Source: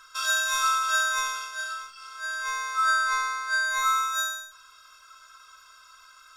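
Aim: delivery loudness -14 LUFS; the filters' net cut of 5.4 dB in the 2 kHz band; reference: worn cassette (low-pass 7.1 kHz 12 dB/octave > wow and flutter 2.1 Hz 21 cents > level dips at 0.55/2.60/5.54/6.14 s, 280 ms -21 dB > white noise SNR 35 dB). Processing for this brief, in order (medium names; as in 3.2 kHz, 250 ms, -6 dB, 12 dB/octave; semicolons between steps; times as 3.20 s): low-pass 7.1 kHz 12 dB/octave; peaking EQ 2 kHz -8 dB; wow and flutter 2.1 Hz 21 cents; level dips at 0.55/2.60/5.54/6.14 s, 280 ms -21 dB; white noise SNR 35 dB; trim +16.5 dB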